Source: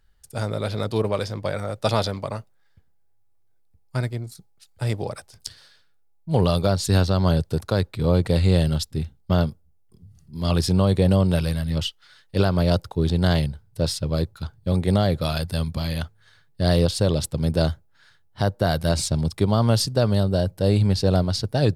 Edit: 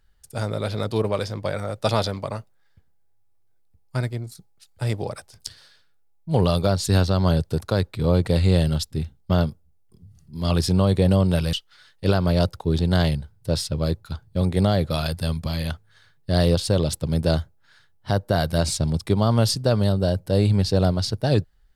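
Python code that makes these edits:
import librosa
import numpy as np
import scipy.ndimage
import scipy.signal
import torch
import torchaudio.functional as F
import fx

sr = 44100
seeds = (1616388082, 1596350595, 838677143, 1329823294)

y = fx.edit(x, sr, fx.cut(start_s=11.53, length_s=0.31), tone=tone)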